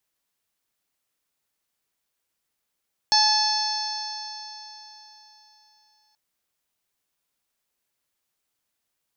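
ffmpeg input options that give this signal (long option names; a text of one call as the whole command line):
ffmpeg -f lavfi -i "aevalsrc='0.1*pow(10,-3*t/3.67)*sin(2*PI*854.9*t)+0.0335*pow(10,-3*t/3.67)*sin(2*PI*1715.16*t)+0.0126*pow(10,-3*t/3.67)*sin(2*PI*2586.1*t)+0.0211*pow(10,-3*t/3.67)*sin(2*PI*3472.91*t)+0.112*pow(10,-3*t/3.67)*sin(2*PI*4380.65*t)+0.112*pow(10,-3*t/3.67)*sin(2*PI*5314.16*t)+0.0398*pow(10,-3*t/3.67)*sin(2*PI*6278.04*t)':duration=3.03:sample_rate=44100" out.wav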